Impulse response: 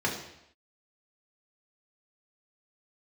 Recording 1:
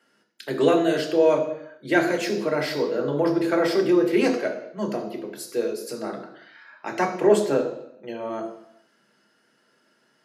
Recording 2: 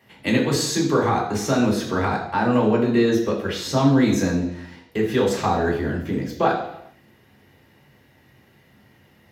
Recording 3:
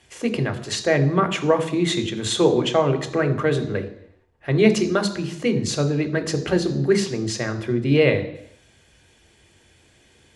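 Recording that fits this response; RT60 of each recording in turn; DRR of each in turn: 2; 0.75, 0.75, 0.75 s; 1.5, -3.0, 6.5 dB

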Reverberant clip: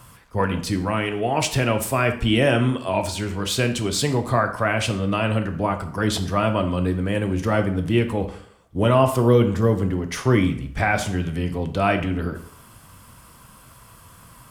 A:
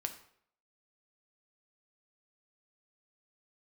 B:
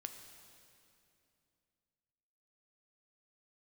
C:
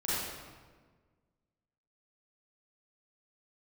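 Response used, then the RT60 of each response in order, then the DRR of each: A; 0.65, 2.7, 1.5 s; 5.5, 5.5, -11.0 dB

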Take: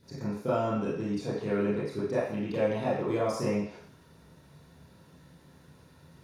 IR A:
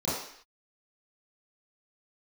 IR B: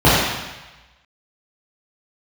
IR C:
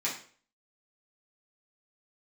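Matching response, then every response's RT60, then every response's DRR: A; not exponential, 1.1 s, 0.45 s; -12.0, -11.0, -8.0 dB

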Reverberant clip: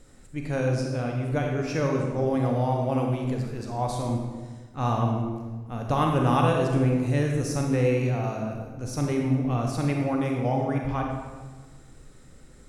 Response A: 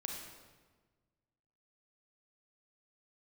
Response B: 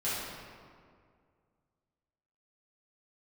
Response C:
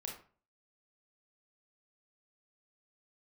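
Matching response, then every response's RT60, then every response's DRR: A; 1.4, 2.1, 0.40 s; 0.5, -11.5, -0.5 dB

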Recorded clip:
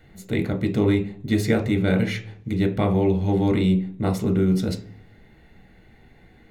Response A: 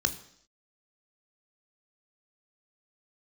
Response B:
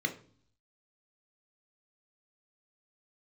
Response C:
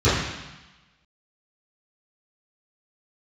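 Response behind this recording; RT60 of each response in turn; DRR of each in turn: B; 0.65, 0.50, 1.0 s; 9.0, 5.0, -18.0 dB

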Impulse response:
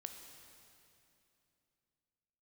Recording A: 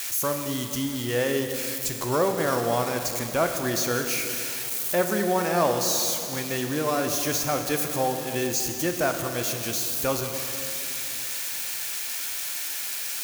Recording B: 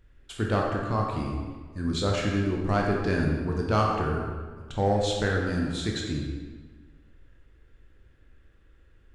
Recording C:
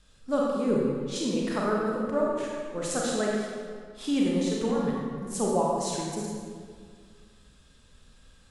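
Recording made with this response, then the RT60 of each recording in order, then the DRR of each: A; 2.8, 1.5, 2.0 s; 4.5, -1.5, -3.5 dB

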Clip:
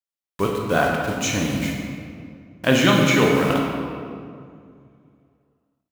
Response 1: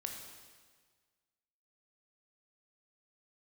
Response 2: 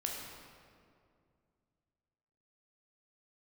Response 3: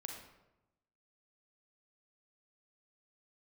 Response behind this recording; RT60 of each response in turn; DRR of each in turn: 2; 1.6, 2.3, 0.95 s; 2.0, -1.5, 1.5 dB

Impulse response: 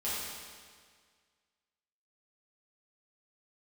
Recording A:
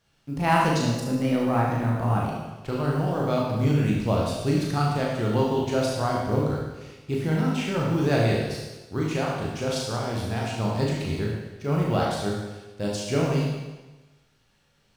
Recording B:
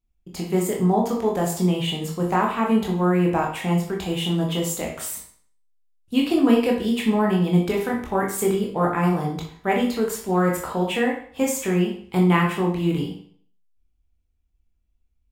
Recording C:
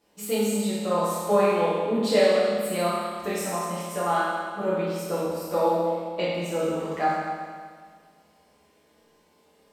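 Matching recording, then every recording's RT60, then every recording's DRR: C; 1.2, 0.55, 1.8 s; -3.5, -1.0, -10.5 dB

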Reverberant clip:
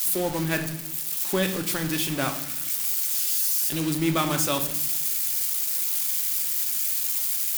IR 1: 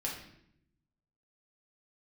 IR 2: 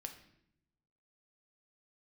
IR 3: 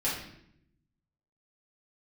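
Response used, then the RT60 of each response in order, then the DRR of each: 2; 0.75, 0.75, 0.75 s; -4.0, 4.5, -9.0 dB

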